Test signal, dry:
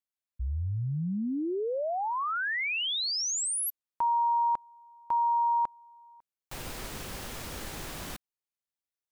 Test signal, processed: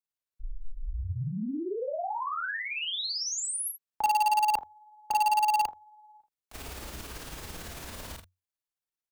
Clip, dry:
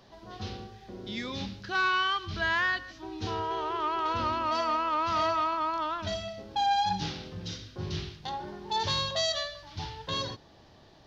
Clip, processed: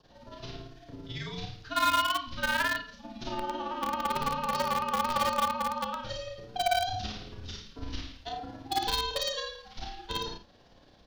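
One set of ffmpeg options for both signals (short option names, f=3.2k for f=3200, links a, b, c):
-filter_complex "[0:a]adynamicequalizer=threshold=0.00316:dfrequency=2200:dqfactor=4.3:tfrequency=2200:tqfactor=4.3:attack=5:release=100:ratio=0.375:range=2.5:mode=cutabove:tftype=bell,tremolo=f=18:d=0.89,aecho=1:1:33|56|79:0.668|0.141|0.282,asplit=2[a][b];[b]acrusher=bits=3:mix=0:aa=0.000001,volume=-6.5dB[c];[a][c]amix=inputs=2:normalize=0,afreqshift=-91"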